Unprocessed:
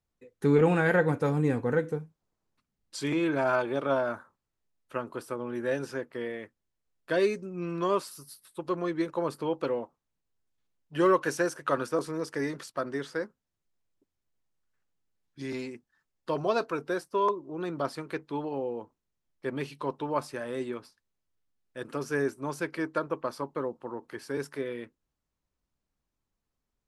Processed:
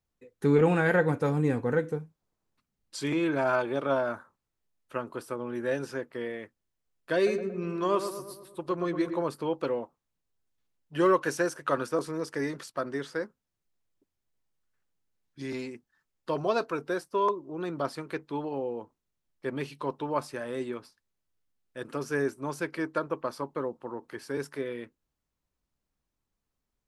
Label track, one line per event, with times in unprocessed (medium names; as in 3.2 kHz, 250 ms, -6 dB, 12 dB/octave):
7.150000	9.220000	filtered feedback delay 115 ms, feedback 57%, low-pass 1.6 kHz, level -8 dB